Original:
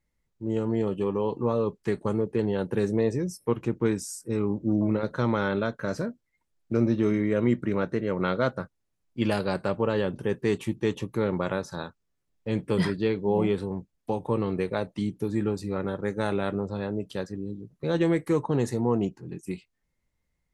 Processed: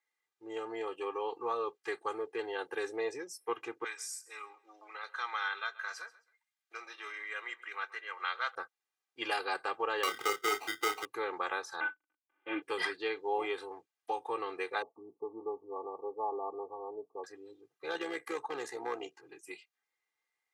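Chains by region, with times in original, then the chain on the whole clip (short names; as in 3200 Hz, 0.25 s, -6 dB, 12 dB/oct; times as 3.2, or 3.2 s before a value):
3.84–8.55 HPF 1200 Hz + feedback echo 0.133 s, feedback 25%, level -19 dB
10.03–11.05 sample-rate reducer 1700 Hz + doubler 29 ms -6 dB + three-band squash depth 70%
11.8–12.62 CVSD 16 kbps + comb 3.4 ms, depth 64% + small resonant body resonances 300/1500 Hz, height 14 dB, ringing for 85 ms
14.82–17.24 brick-wall FIR low-pass 1200 Hz + comb 4.6 ms, depth 30%
17.86–19.21 hard clip -16.5 dBFS + AM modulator 65 Hz, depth 40% + three-band squash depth 70%
whole clip: HPF 1000 Hz 12 dB/oct; high shelf 4000 Hz -9 dB; comb 2.5 ms, depth 99%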